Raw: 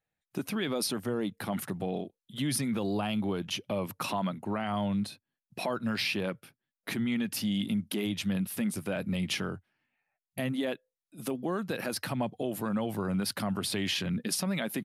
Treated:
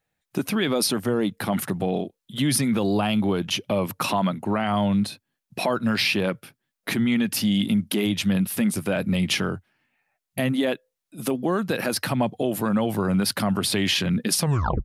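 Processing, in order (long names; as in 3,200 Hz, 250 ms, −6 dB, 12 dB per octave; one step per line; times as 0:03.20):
turntable brake at the end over 0.45 s
level +8.5 dB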